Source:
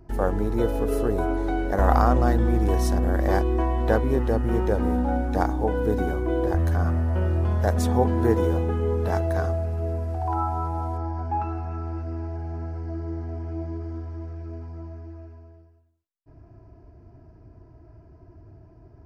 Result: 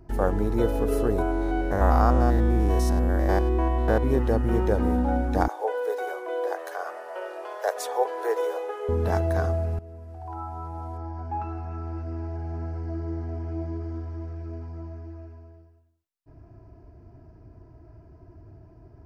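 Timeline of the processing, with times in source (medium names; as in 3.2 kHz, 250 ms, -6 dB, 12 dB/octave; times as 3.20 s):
1.22–4.03 s: spectrogram pixelated in time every 100 ms
5.48–8.89 s: steep high-pass 430 Hz 48 dB/octave
9.79–12.66 s: fade in, from -17 dB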